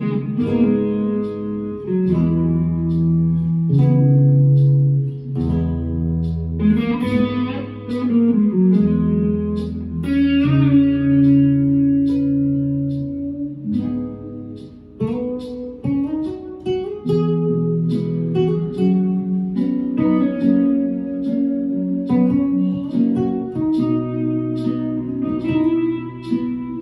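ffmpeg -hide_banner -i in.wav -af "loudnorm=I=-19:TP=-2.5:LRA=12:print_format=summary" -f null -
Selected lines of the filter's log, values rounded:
Input Integrated:    -18.8 LUFS
Input True Peak:      -4.8 dBTP
Input LRA:             5.4 LU
Input Threshold:     -28.9 LUFS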